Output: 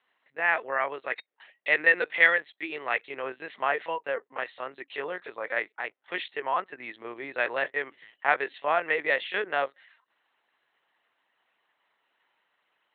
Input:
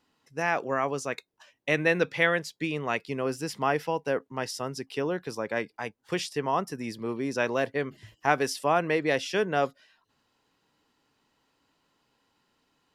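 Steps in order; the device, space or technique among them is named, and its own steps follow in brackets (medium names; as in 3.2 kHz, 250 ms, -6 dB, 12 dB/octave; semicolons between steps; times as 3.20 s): talking toy (LPC vocoder at 8 kHz pitch kept; high-pass 530 Hz 12 dB/octave; peaking EQ 1.9 kHz +8 dB 0.46 oct)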